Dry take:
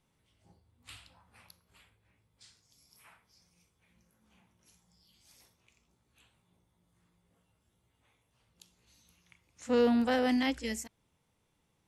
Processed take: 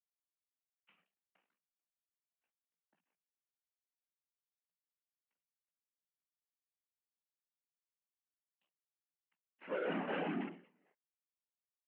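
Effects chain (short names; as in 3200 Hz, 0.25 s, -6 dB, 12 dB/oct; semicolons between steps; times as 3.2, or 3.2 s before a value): on a send: flutter echo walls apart 4.6 m, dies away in 0.34 s; on the sum: fuzz box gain 41 dB, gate -50 dBFS; chorus voices 4, 0.37 Hz, delay 15 ms, depth 1.1 ms; whisperiser; Chebyshev band-pass 170–2900 Hz, order 5; reverse; compressor 10:1, threshold -40 dBFS, peak gain reduction 28.5 dB; reverse; ending taper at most 130 dB/s; gain +4 dB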